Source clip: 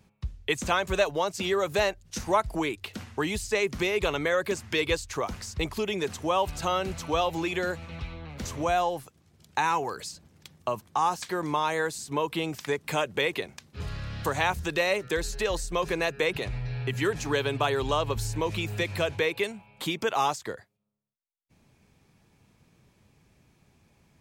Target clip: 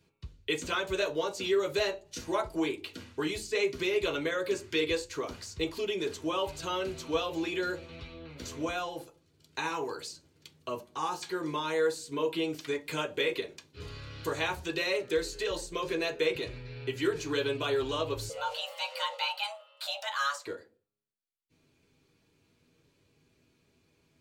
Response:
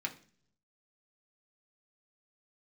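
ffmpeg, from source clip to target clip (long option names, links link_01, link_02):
-filter_complex "[0:a]asettb=1/sr,asplit=3[link_01][link_02][link_03];[link_01]atrim=end=18.294[link_04];[link_02]atrim=start=18.29:end=20.46,asetpts=PTS-STARTPTS,afade=type=in:duration=0.004:curve=qsin,afade=type=out:start_time=2.166:duration=0.004:curve=qsin,afreqshift=420[link_05];[link_03]atrim=start=20.456[link_06];[link_04][link_05]acrossfade=duration=0.004:curve1=hsin:curve2=qsin[link_07];[link_07][link_06]acrossfade=duration=0.004:curve1=qsin:curve2=hsin[link_08];[1:a]atrim=start_sample=2205,asetrate=79380,aresample=44100[link_09];[link_08][link_09]afir=irnorm=-1:irlink=0"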